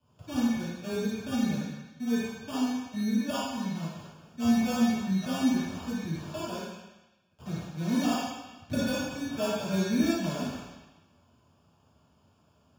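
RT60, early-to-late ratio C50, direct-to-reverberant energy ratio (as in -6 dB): 1.1 s, -3.5 dB, -10.5 dB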